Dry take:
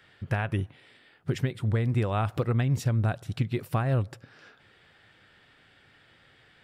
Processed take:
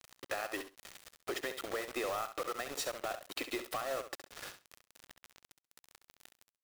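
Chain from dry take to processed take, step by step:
elliptic high-pass filter 300 Hz, stop band 40 dB
parametric band 4,200 Hz +3.5 dB 0.46 octaves
comb filter 1.6 ms, depth 44%
dynamic equaliser 1,200 Hz, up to +7 dB, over −46 dBFS, Q 1
in parallel at +2 dB: brickwall limiter −25.5 dBFS, peak gain reduction 14 dB
on the sum: transient designer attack +3 dB, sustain −3 dB
downward compressor 8 to 1, threshold −32 dBFS, peak gain reduction 16.5 dB
hard clipping −31.5 dBFS, distortion −10 dB
bit reduction 7 bits
on a send: repeating echo 67 ms, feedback 17%, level −10 dB
on the sum: level −1 dB

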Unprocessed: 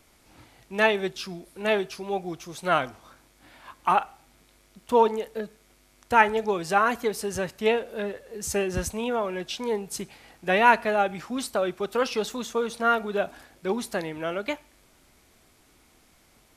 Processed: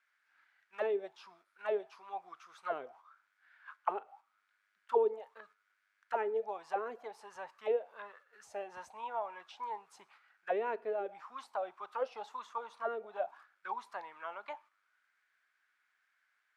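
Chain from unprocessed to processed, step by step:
tilt shelving filter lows −7.5 dB, about 820 Hz
noise gate −44 dBFS, range −7 dB
envelope filter 410–1,600 Hz, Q 6.6, down, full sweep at −17.5 dBFS

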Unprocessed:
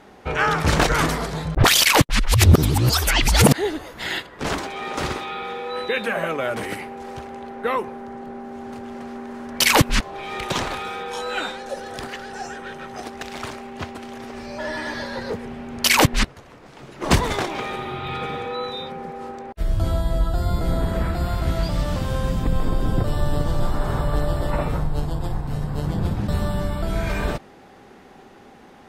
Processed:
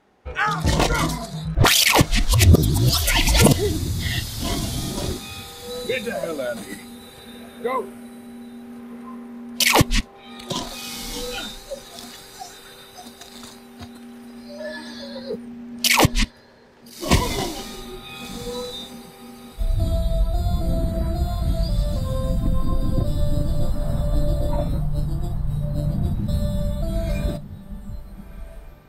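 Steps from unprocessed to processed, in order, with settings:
feedback delay with all-pass diffusion 1,383 ms, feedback 42%, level −9.5 dB
noise reduction from a noise print of the clip's start 13 dB

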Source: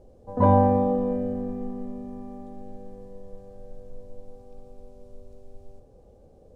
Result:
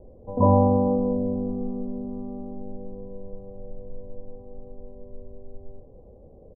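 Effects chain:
adaptive Wiener filter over 15 samples
Butterworth low-pass 1,100 Hz 72 dB per octave
parametric band 810 Hz −5 dB 0.23 octaves
in parallel at −2.5 dB: downward compressor, threshold −35 dBFS, peak gain reduction 19 dB
on the sum: repeating echo 215 ms, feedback 59%, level −23 dB

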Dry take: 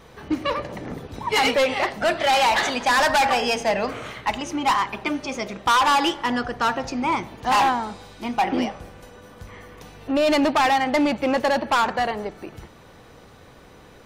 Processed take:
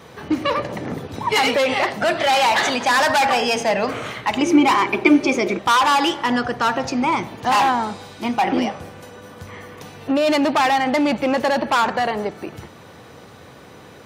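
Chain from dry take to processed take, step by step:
high-pass filter 82 Hz 24 dB per octave
brickwall limiter −16.5 dBFS, peak gain reduction 5 dB
0:04.37–0:05.59: hollow resonant body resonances 350/2,300 Hz, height 14 dB, ringing for 30 ms
level +5.5 dB

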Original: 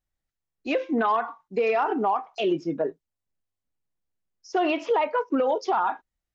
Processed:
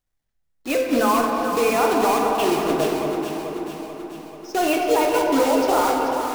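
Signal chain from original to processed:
one scale factor per block 3 bits
delay that swaps between a low-pass and a high-pass 218 ms, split 1,000 Hz, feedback 76%, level −5 dB
rectangular room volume 130 cubic metres, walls hard, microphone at 0.35 metres
level +1.5 dB

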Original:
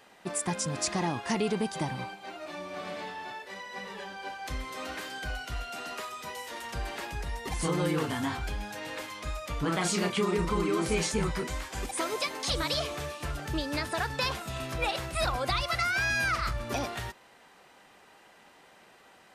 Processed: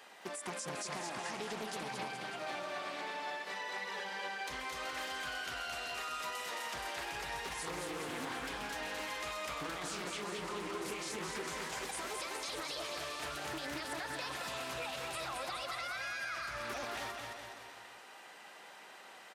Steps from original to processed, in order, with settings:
high-pass filter 610 Hz 6 dB per octave
brickwall limiter −29.5 dBFS, peak gain reduction 11.5 dB
downward compressor 6 to 1, threshold −42 dBFS, peak gain reduction 8 dB
on a send: bouncing-ball delay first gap 220 ms, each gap 0.9×, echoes 5
on the sum: highs frequency-modulated by the lows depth 0.33 ms
level +2.5 dB

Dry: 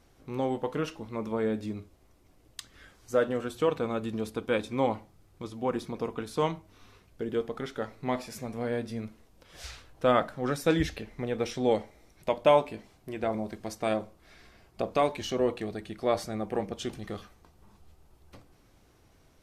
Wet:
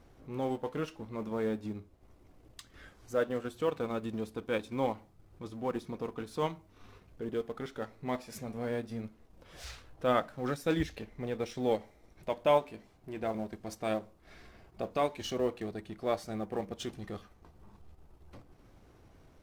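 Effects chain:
mu-law and A-law mismatch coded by mu
transient designer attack −3 dB, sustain −7 dB
one half of a high-frequency compander decoder only
level −4 dB

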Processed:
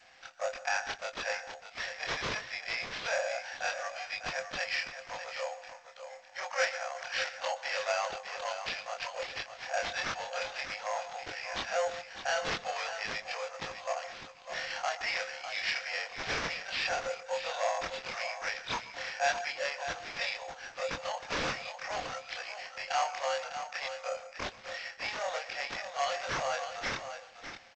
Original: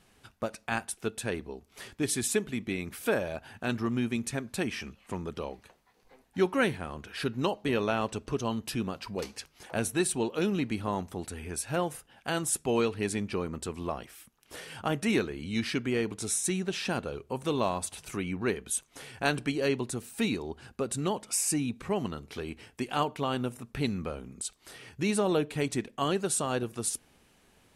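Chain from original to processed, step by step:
every overlapping window played backwards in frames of 57 ms
in parallel at +2 dB: downward compressor 5 to 1, threshold −41 dBFS, peak gain reduction 15.5 dB
on the sum: harmonic generator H 2 −24 dB, 4 −18 dB, 5 −8 dB, 7 −22 dB, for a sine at −12 dBFS
soft clipping −16 dBFS, distortion −19 dB
Chebyshev high-pass with heavy ripple 510 Hz, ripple 9 dB
single-tap delay 602 ms −9.5 dB
on a send at −15 dB: convolution reverb RT60 0.40 s, pre-delay 117 ms
on the sum: bad sample-rate conversion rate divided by 6×, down none, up hold
G.722 64 kbit/s 16,000 Hz

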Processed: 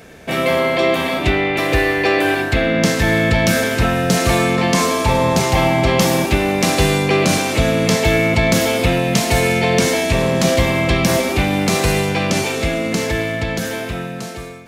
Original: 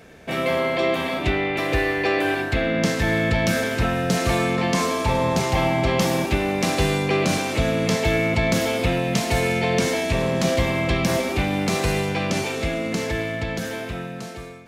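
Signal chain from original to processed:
high-shelf EQ 6,600 Hz +5 dB
level +5.5 dB

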